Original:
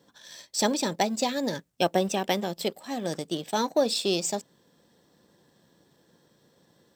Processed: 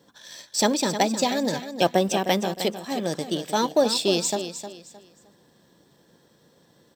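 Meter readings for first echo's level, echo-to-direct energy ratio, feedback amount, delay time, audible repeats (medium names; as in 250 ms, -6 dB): -10.5 dB, -10.0 dB, 28%, 309 ms, 3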